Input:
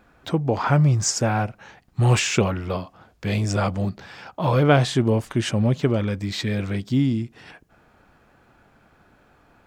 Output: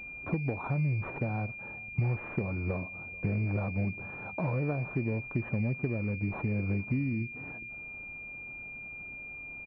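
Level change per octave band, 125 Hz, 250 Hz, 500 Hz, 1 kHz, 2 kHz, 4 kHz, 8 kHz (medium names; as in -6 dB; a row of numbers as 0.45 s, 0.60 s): -9.5 dB, -10.0 dB, -13.5 dB, -15.5 dB, -5.5 dB, under -35 dB, under -40 dB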